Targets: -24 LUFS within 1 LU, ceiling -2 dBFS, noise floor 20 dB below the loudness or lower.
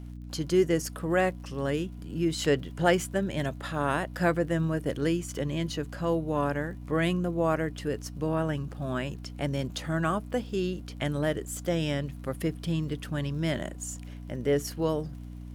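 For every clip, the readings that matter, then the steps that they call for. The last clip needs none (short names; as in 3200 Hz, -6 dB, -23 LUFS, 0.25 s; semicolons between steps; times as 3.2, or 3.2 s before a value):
ticks 51/s; hum 60 Hz; harmonics up to 300 Hz; hum level -39 dBFS; loudness -30.0 LUFS; peak -11.0 dBFS; loudness target -24.0 LUFS
-> de-click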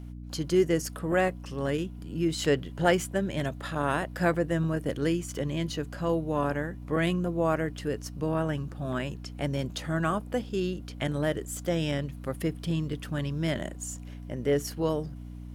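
ticks 0.64/s; hum 60 Hz; harmonics up to 300 Hz; hum level -39 dBFS
-> de-hum 60 Hz, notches 5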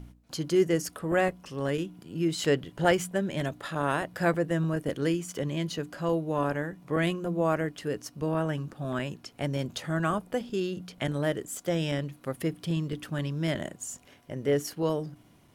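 hum none; loudness -30.0 LUFS; peak -11.0 dBFS; loudness target -24.0 LUFS
-> gain +6 dB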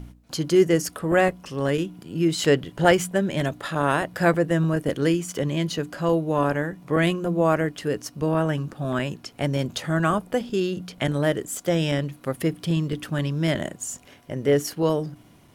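loudness -24.0 LUFS; peak -5.0 dBFS; noise floor -52 dBFS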